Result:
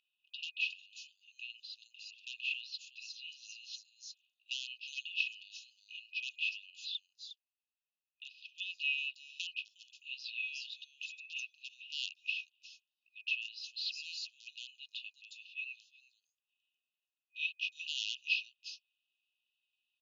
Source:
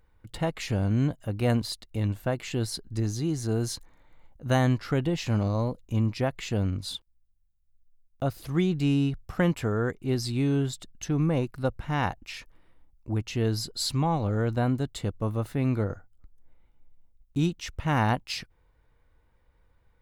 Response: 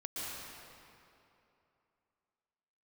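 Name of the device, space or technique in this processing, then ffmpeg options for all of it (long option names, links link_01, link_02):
megaphone: -filter_complex "[0:a]asettb=1/sr,asplit=3[link_01][link_02][link_03];[link_01]atrim=end=0.734[link_04];[link_02]atrim=start=0.73:end=2.08,asetpts=PTS-STARTPTS,afade=type=in:duration=0.004:curve=qsin,afade=type=out:start_time=1.346:duration=0.004:curve=qsin,aderivative[link_05];[link_03]atrim=start=2.076[link_06];[link_04][link_05]acrossfade=duration=0.004:curve1=hsin:curve2=qsin[link_07];[link_07][link_06]acrossfade=duration=0.004:curve1=qsin:curve2=hsin,highpass=460,lowpass=2500,equalizer=frequency=2500:width_type=o:width=0.24:gain=8.5,acrossover=split=4900[link_08][link_09];[link_09]adelay=360[link_10];[link_08][link_10]amix=inputs=2:normalize=0,asoftclip=type=hard:threshold=-22dB,afftfilt=real='re*between(b*sr/4096,2500,7200)':imag='im*between(b*sr/4096,2500,7200)':win_size=4096:overlap=0.75,volume=7dB"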